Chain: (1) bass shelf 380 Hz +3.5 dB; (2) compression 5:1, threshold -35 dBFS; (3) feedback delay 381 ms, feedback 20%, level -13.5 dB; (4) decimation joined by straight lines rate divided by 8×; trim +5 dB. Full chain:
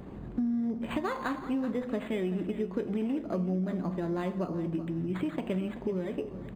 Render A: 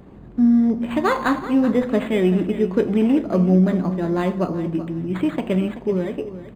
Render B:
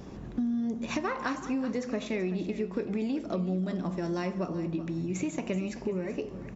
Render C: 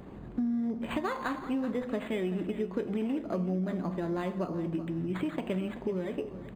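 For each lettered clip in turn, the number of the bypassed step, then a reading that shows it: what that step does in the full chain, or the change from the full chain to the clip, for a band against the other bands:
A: 2, mean gain reduction 9.5 dB; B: 4, 4 kHz band +3.0 dB; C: 1, 125 Hz band -1.5 dB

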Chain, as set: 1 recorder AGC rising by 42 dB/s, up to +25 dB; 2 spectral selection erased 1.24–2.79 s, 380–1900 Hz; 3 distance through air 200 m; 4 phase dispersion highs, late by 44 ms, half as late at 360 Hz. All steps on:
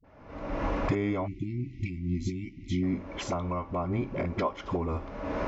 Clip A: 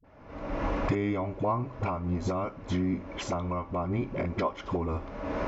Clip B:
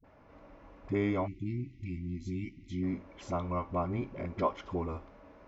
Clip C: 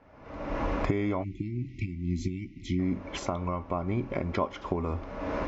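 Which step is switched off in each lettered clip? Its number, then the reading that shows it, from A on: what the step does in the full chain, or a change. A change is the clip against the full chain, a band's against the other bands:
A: 2, 1 kHz band +2.5 dB; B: 1, crest factor change +2.0 dB; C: 4, crest factor change +3.5 dB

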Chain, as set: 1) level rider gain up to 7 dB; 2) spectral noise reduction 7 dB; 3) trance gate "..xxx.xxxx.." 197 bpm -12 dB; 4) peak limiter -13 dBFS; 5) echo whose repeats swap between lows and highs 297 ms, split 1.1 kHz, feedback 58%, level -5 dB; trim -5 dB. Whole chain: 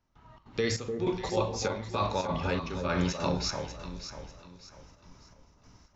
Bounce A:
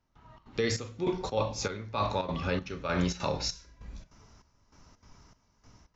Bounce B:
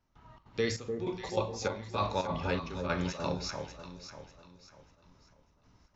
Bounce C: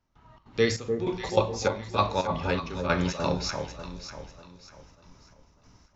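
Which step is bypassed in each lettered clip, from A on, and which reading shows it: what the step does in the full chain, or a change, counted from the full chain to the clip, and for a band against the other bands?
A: 5, echo-to-direct -7.0 dB to none; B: 1, crest factor change +2.0 dB; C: 4, crest factor change +6.0 dB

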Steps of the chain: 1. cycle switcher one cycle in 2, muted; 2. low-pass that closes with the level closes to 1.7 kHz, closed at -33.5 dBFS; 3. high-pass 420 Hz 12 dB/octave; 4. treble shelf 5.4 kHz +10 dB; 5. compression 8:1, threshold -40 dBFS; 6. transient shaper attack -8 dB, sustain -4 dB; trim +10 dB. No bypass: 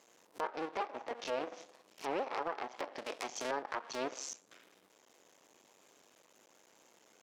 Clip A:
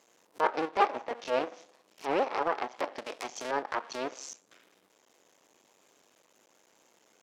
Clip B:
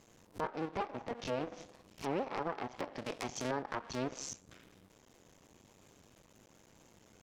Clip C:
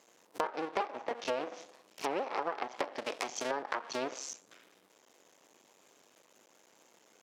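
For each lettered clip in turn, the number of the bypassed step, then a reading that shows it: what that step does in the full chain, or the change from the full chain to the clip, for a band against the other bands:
5, mean gain reduction 5.0 dB; 3, 125 Hz band +16.5 dB; 6, momentary loudness spread change +2 LU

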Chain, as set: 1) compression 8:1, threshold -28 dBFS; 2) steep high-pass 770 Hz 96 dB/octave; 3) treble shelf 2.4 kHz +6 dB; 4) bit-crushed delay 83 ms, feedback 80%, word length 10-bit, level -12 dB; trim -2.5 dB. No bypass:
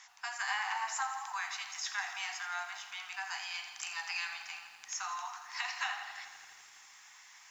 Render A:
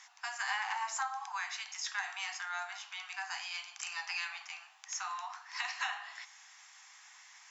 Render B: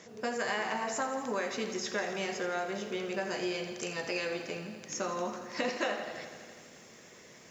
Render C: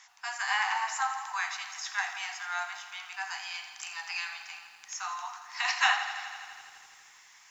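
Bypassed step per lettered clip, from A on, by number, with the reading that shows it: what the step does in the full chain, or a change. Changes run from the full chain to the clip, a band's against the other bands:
4, momentary loudness spread change +1 LU; 2, 500 Hz band +26.0 dB; 1, mean gain reduction 2.0 dB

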